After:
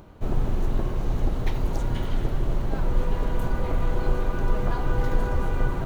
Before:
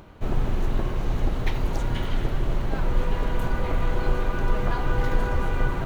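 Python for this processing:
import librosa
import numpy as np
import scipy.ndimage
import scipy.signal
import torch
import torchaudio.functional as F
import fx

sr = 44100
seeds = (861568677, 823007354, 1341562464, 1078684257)

y = fx.peak_eq(x, sr, hz=2300.0, db=-5.5, octaves=2.0)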